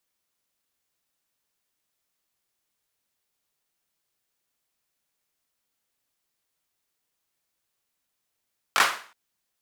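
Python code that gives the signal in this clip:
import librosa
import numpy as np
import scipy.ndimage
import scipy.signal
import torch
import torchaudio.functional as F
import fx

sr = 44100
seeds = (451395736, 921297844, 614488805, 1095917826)

y = fx.drum_clap(sr, seeds[0], length_s=0.37, bursts=3, spacing_ms=20, hz=1300.0, decay_s=0.43)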